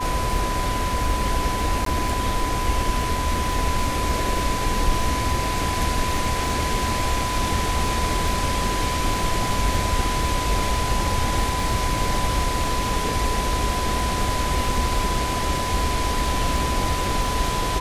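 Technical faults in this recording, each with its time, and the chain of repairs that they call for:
crackle 39/s -29 dBFS
tone 1000 Hz -26 dBFS
1.85–1.86 gap 13 ms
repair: de-click; notch 1000 Hz, Q 30; interpolate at 1.85, 13 ms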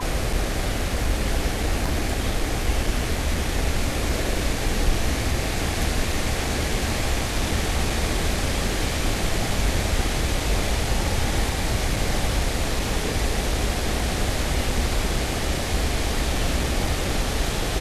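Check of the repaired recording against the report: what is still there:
none

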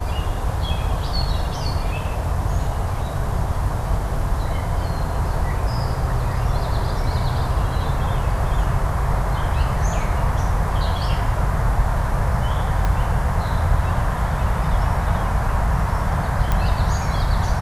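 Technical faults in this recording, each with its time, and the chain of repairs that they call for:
12.85 pop -10 dBFS
16.52 pop -8 dBFS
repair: de-click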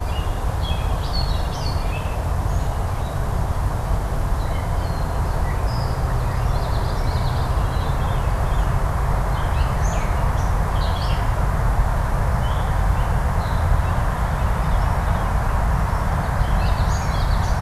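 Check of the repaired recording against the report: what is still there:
12.85 pop

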